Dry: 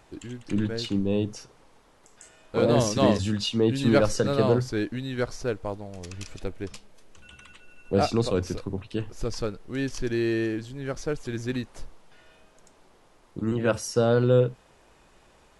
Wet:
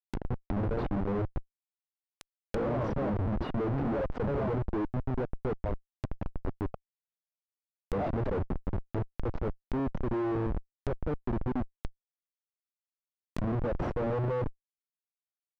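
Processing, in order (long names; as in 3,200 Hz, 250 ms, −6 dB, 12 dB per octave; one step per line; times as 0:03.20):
reverb reduction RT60 1.3 s
comparator with hysteresis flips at −31.5 dBFS
treble cut that deepens with the level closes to 1,100 Hz, closed at −32 dBFS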